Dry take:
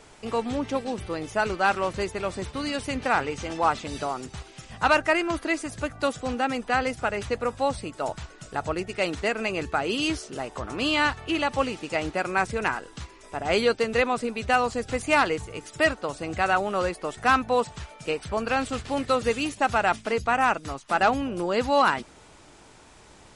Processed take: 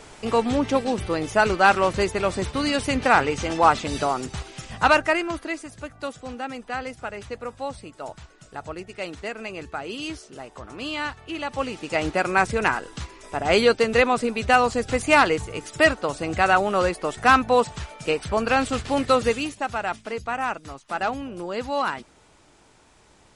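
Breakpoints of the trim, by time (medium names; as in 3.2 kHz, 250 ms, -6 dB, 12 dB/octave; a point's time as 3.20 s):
4.66 s +6 dB
5.73 s -6 dB
11.32 s -6 dB
12.07 s +4.5 dB
19.20 s +4.5 dB
19.66 s -4.5 dB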